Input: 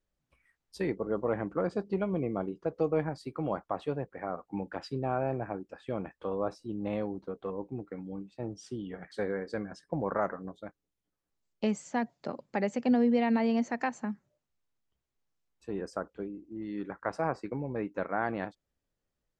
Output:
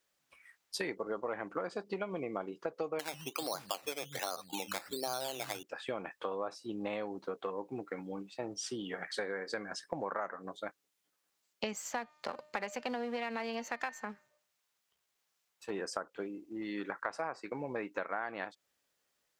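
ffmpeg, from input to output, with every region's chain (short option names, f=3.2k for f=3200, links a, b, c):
-filter_complex "[0:a]asettb=1/sr,asplit=3[a][b][c];[a]atrim=end=2.994[d];[b]atrim=start=2.99:end=5.63,asetpts=PTS-STARTPTS,afade=t=in:d=0.004:c=qsin,afade=t=out:st=2.636:d=0.004:c=qsin,acrossover=split=190|3600[e][f][g];[e]adelay=140[h];[g]adelay=420[i];[h][f][i]amix=inputs=3:normalize=0,atrim=end_sample=116424,acrusher=samples=12:mix=1:aa=0.000001:lfo=1:lforange=7.2:lforate=1.3[j];[c]atrim=start=5.626[k];[d][j]acrossfade=d=0.004:c1=hsin:c2=qsin[l];[l][k]acrossfade=d=0.004:c1=qsin:c2=hsin,asettb=1/sr,asplit=3[m][n][o];[m]atrim=end=11.734[p];[n]atrim=start=11.73:end=15.7,asetpts=PTS-STARTPTS,afade=t=in:d=0.004:c=qsin,afade=t=out:st=3.966:d=0.004:c=qsin,aeval=exprs='if(lt(val(0),0),0.447*val(0),val(0))':c=same,equalizer=f=290:w=4.2:g=-6.5,bandreject=f=302.9:t=h:w=4,bandreject=f=605.8:t=h:w=4,bandreject=f=908.7:t=h:w=4,bandreject=f=1.2116k:t=h:w=4,bandreject=f=1.5145k:t=h:w=4,bandreject=f=1.8174k:t=h:w=4,bandreject=f=2.1203k:t=h:w=4,bandreject=f=2.4232k:t=h:w=4,bandreject=f=2.7261k:t=h:w=4,bandreject=f=3.029k:t=h:w=4,bandreject=f=3.3319k:t=h:w=4,bandreject=f=3.6348k:t=h:w=4,bandreject=f=3.9377k:t=h:w=4,bandreject=f=4.2406k:t=h:w=4,bandreject=f=4.5435k:t=h:w=4,bandreject=f=4.8464k:t=h:w=4[q];[o]atrim=start=15.696[r];[p][q]acrossfade=d=0.004:c1=hsin:c2=qsin[s];[s][r]acrossfade=d=0.004:c1=qsin:c2=hsin,highpass=f=1.3k:p=1,acompressor=threshold=-46dB:ratio=6,volume=12dB"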